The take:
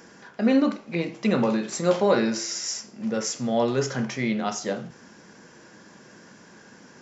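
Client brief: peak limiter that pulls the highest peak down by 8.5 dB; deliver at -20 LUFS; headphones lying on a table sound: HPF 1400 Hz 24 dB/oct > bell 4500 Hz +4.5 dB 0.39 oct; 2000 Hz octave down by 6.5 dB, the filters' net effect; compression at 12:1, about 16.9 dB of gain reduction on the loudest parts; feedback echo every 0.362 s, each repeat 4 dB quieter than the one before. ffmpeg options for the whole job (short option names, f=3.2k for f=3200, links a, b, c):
-af "equalizer=f=2k:t=o:g=-7.5,acompressor=threshold=-33dB:ratio=12,alimiter=level_in=7dB:limit=-24dB:level=0:latency=1,volume=-7dB,highpass=f=1.4k:w=0.5412,highpass=f=1.4k:w=1.3066,equalizer=f=4.5k:t=o:w=0.39:g=4.5,aecho=1:1:362|724|1086|1448|1810|2172|2534|2896|3258:0.631|0.398|0.25|0.158|0.0994|0.0626|0.0394|0.0249|0.0157,volume=22.5dB"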